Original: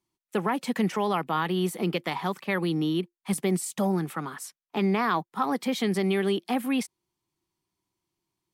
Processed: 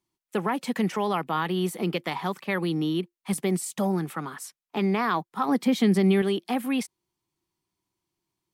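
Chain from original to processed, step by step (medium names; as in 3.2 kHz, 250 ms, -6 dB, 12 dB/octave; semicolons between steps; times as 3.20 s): 5.48–6.22 s: peaking EQ 220 Hz +7 dB 1.4 oct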